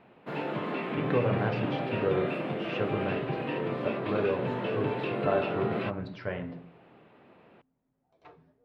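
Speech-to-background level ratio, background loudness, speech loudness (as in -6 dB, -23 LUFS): -1.0 dB, -32.5 LUFS, -33.5 LUFS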